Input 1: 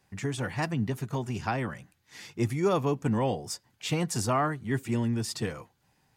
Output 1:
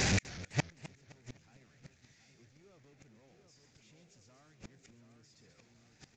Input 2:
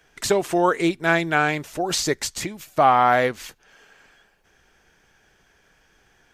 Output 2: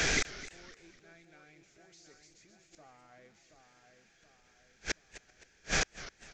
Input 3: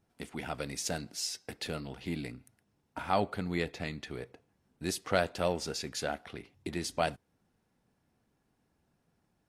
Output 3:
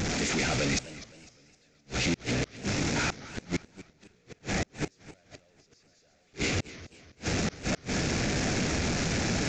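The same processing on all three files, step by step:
converter with a step at zero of −21 dBFS
parametric band 2,900 Hz −7.5 dB 0.49 octaves
hum removal 370.4 Hz, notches 17
log-companded quantiser 6 bits
graphic EQ with 15 bands 1,000 Hz −9 dB, 2,500 Hz +7 dB, 6,300 Hz +4 dB
on a send: echo with a time of its own for lows and highs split 2,400 Hz, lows 726 ms, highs 132 ms, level −6.5 dB
on the sum: downsampling to 16,000 Hz
gate with flip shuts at −17 dBFS, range −39 dB
feedback echo with a swinging delay time 255 ms, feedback 38%, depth 189 cents, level −16.5 dB
level −2 dB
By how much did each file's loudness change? −8.0, −14.5, +5.0 LU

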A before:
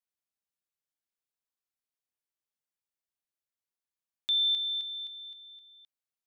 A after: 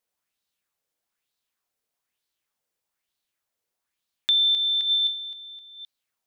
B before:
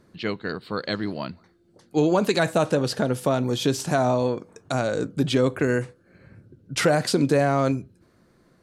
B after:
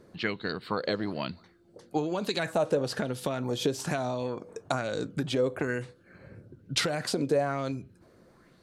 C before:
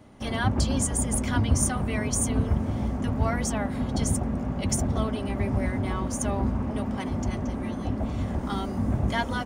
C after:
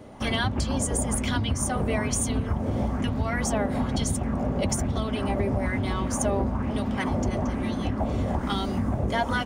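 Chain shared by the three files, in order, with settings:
downward compressor, threshold −27 dBFS
auto-filter bell 1.1 Hz 450–4,100 Hz +9 dB
normalise the peak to −12 dBFS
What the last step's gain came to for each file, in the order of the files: +9.0, −1.0, +4.5 decibels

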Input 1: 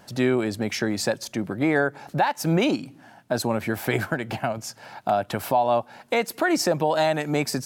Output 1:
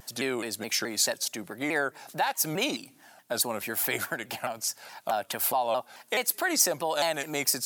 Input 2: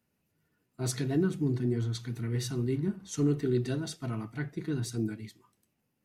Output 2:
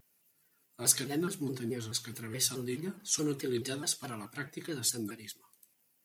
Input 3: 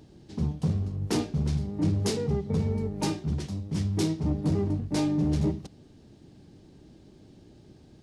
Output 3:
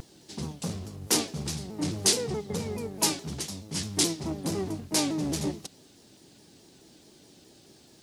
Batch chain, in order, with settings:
RIAA equalisation recording
pitch modulation by a square or saw wave saw down 4.7 Hz, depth 160 cents
normalise the peak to −9 dBFS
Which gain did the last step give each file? −5.0, 0.0, +2.5 decibels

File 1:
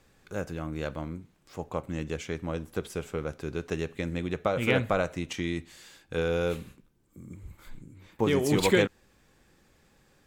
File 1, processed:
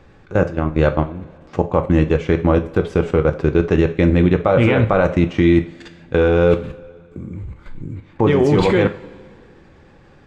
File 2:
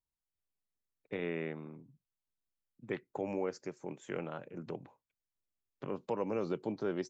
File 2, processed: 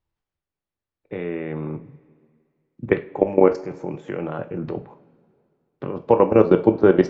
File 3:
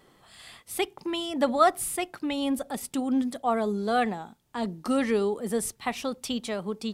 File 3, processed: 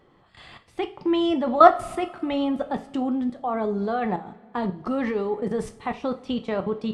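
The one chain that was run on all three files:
dynamic equaliser 960 Hz, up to +3 dB, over −37 dBFS, Q 1.4
output level in coarse steps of 17 dB
head-to-tape spacing loss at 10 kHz 27 dB
coupled-rooms reverb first 0.34 s, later 2.3 s, from −20 dB, DRR 7 dB
normalise the peak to −1.5 dBFS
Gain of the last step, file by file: +21.5, +23.5, +11.0 decibels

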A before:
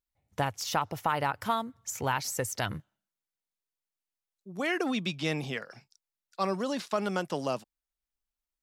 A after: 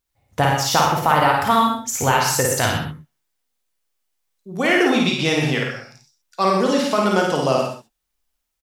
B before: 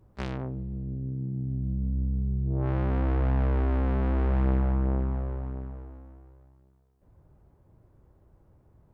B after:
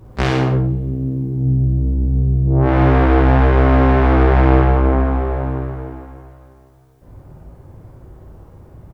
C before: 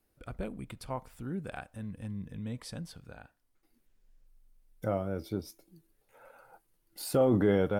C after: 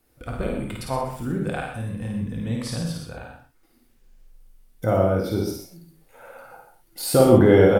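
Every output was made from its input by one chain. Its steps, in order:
on a send: multi-tap delay 53/121 ms −3.5/−10 dB
on the sum: reverb whose tail is shaped and stops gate 150 ms flat, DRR 2.5 dB
normalise the peak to −2 dBFS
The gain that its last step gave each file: +9.5, +16.0, +8.5 decibels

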